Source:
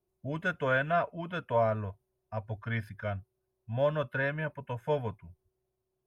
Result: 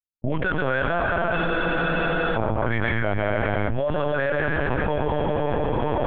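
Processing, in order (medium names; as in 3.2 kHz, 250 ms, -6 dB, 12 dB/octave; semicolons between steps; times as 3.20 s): level-controlled noise filter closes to 880 Hz, open at -25.5 dBFS; gate -53 dBFS, range -58 dB; on a send at -3 dB: reverberation RT60 2.4 s, pre-delay 108 ms; on the sum: LPC vocoder at 8 kHz pitch kept; spectral freeze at 1.38 s, 0.97 s; level flattener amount 100%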